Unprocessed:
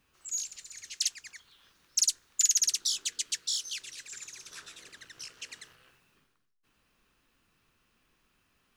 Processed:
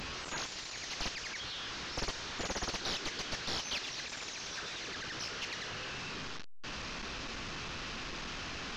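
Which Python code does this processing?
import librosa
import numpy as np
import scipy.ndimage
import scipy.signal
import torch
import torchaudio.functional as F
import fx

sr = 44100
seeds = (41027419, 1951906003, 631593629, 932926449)

p1 = fx.delta_mod(x, sr, bps=32000, step_db=-38.5)
p2 = 10.0 ** (-36.5 / 20.0) * np.tanh(p1 / 10.0 ** (-36.5 / 20.0))
y = p1 + (p2 * 10.0 ** (-5.5 / 20.0))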